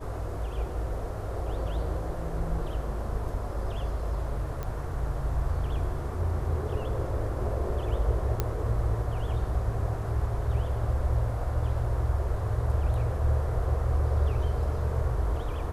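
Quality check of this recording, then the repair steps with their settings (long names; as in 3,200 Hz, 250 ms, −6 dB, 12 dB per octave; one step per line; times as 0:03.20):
0:04.63: click −21 dBFS
0:08.40: click −13 dBFS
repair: click removal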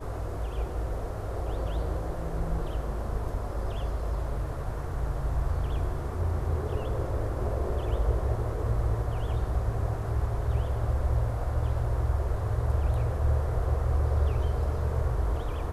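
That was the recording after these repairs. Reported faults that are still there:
none of them is left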